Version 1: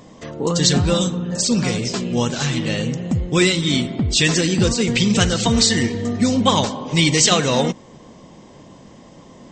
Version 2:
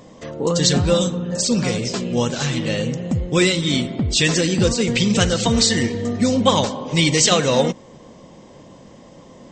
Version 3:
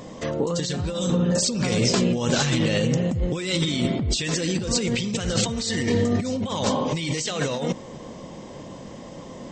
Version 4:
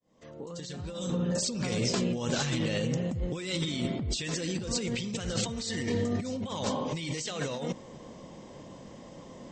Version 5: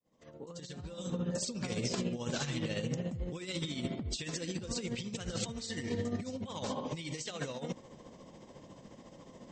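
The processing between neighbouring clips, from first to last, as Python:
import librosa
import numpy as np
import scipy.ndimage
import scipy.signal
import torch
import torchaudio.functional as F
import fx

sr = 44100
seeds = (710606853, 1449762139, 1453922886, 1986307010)

y1 = fx.peak_eq(x, sr, hz=530.0, db=5.0, octaves=0.32)
y1 = y1 * librosa.db_to_amplitude(-1.0)
y2 = fx.over_compress(y1, sr, threshold_db=-24.0, ratio=-1.0)
y3 = fx.fade_in_head(y2, sr, length_s=1.25)
y3 = y3 * librosa.db_to_amplitude(-8.0)
y4 = y3 * (1.0 - 0.53 / 2.0 + 0.53 / 2.0 * np.cos(2.0 * np.pi * 14.0 * (np.arange(len(y3)) / sr)))
y4 = y4 * librosa.db_to_amplitude(-3.5)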